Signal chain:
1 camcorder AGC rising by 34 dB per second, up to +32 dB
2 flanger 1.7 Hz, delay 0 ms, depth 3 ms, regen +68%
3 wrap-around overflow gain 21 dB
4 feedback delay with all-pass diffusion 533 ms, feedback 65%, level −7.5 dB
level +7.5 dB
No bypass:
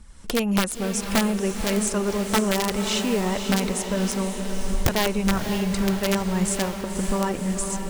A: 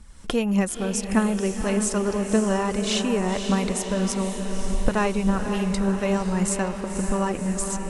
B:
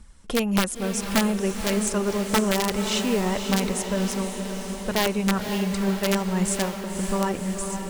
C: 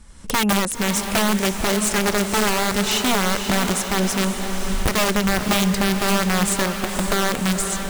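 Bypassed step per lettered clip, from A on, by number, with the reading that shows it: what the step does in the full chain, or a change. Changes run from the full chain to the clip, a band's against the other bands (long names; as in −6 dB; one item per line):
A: 3, distortion level −6 dB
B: 1, change in momentary loudness spread +1 LU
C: 2, 250 Hz band −4.0 dB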